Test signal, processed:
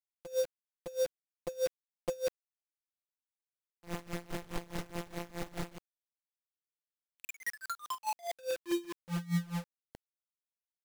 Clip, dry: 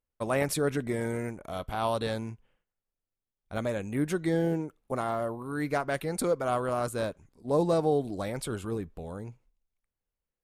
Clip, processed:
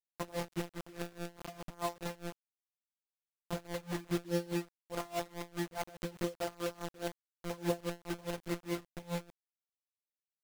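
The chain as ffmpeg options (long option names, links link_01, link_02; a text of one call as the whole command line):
ffmpeg -i in.wav -af "equalizer=frequency=1400:width_type=o:width=0.41:gain=-4,acompressor=threshold=-39dB:ratio=5,afftfilt=real='hypot(re,im)*cos(PI*b)':imag='0':win_size=1024:overlap=0.75,adynamicsmooth=sensitivity=2.5:basefreq=1200,aecho=1:1:76|152:0.0631|0.0215,acrusher=bits=7:mix=0:aa=0.000001,aeval=exprs='val(0)*pow(10,-23*(0.5-0.5*cos(2*PI*4.8*n/s))/20)':channel_layout=same,volume=12dB" out.wav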